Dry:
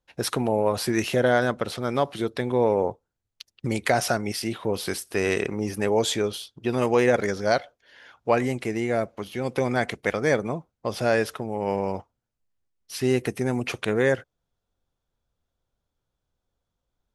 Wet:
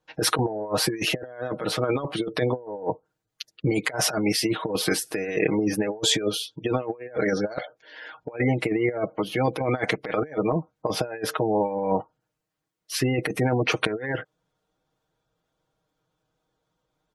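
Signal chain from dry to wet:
high-pass filter 210 Hz 6 dB per octave
gate on every frequency bin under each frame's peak −25 dB strong
high-shelf EQ 2,300 Hz −5.5 dB
comb filter 6.4 ms, depth 83%
compressor whose output falls as the input rises −28 dBFS, ratio −0.5
level +3.5 dB

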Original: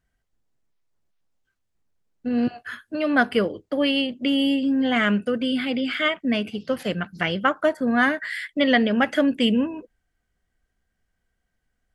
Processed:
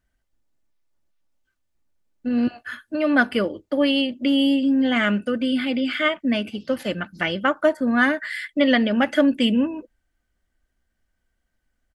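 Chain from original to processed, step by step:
comb filter 3.4 ms, depth 37%

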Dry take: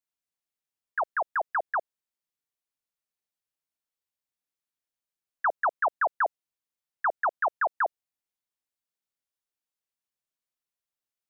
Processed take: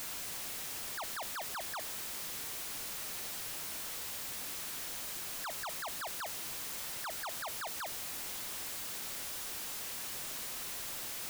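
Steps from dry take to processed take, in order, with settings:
sign of each sample alone
level −4 dB

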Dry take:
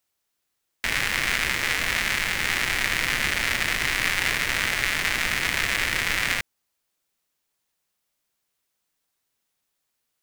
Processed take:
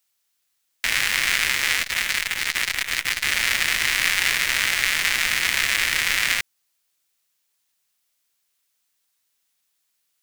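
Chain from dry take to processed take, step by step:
tilt shelving filter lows −6 dB, about 1,200 Hz
0:01.82–0:03.27: saturating transformer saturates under 2,500 Hz

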